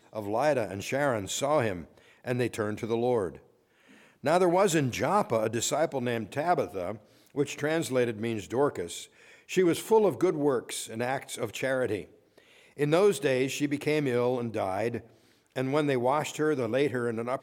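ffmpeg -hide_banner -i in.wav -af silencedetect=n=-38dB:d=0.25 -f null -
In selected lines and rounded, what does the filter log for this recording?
silence_start: 1.84
silence_end: 2.25 | silence_duration: 0.41
silence_start: 3.37
silence_end: 4.24 | silence_duration: 0.87
silence_start: 6.96
silence_end: 7.35 | silence_duration: 0.39
silence_start: 9.04
silence_end: 9.50 | silence_duration: 0.46
silence_start: 12.03
silence_end: 12.79 | silence_duration: 0.75
silence_start: 14.99
silence_end: 15.56 | silence_duration: 0.57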